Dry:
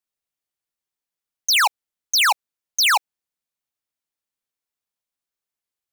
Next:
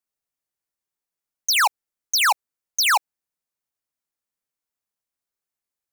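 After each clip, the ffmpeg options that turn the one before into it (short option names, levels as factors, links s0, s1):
-af "equalizer=f=3300:w=1.4:g=-4.5"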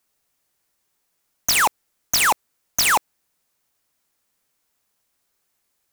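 -af "aeval=exprs='0.188*sin(PI/2*3.55*val(0)/0.188)':c=same,volume=1.12"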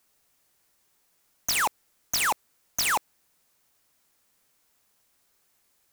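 -af "alimiter=level_in=1.06:limit=0.0631:level=0:latency=1:release=10,volume=0.944,volume=1.5"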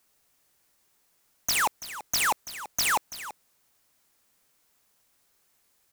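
-af "aecho=1:1:334:0.2"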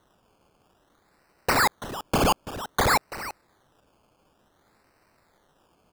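-af "acrusher=samples=18:mix=1:aa=0.000001:lfo=1:lforange=10.8:lforate=0.55,volume=1.58"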